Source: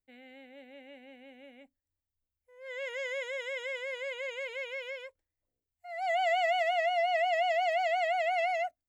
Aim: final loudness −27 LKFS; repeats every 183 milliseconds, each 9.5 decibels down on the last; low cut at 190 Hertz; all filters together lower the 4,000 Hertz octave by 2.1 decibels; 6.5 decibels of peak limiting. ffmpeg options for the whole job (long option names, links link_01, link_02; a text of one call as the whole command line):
ffmpeg -i in.wav -af "highpass=190,equalizer=frequency=4000:width_type=o:gain=-3.5,alimiter=level_in=2.5dB:limit=-24dB:level=0:latency=1,volume=-2.5dB,aecho=1:1:183|366|549|732:0.335|0.111|0.0365|0.012,volume=6dB" out.wav